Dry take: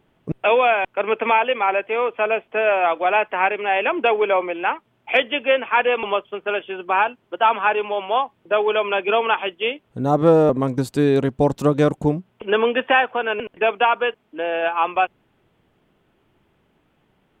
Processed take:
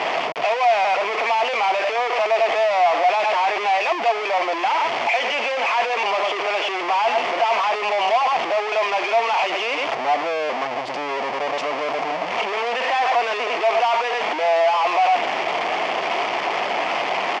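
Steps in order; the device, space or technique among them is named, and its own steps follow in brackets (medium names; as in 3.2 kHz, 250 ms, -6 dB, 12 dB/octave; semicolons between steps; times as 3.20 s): 10.63–11.18 s: tilt EQ -2.5 dB/octave; echo from a far wall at 17 m, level -26 dB; home computer beeper (one-bit comparator; cabinet simulation 640–4400 Hz, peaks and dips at 700 Hz +10 dB, 1 kHz +3 dB, 1.5 kHz -7 dB, 2.2 kHz +4 dB, 3.9 kHz -10 dB)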